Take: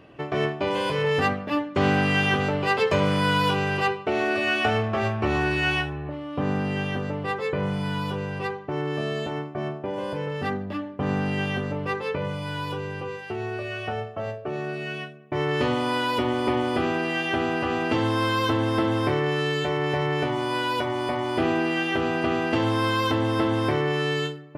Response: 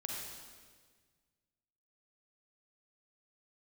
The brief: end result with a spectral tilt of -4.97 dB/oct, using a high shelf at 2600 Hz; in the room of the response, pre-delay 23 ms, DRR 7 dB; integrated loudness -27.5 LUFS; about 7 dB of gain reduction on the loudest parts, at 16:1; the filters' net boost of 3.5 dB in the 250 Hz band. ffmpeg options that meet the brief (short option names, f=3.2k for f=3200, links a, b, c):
-filter_complex "[0:a]equalizer=f=250:t=o:g=5,highshelf=f=2.6k:g=-5.5,acompressor=threshold=-23dB:ratio=16,asplit=2[a][b];[1:a]atrim=start_sample=2205,adelay=23[c];[b][c]afir=irnorm=-1:irlink=0,volume=-7.5dB[d];[a][d]amix=inputs=2:normalize=0,volume=0.5dB"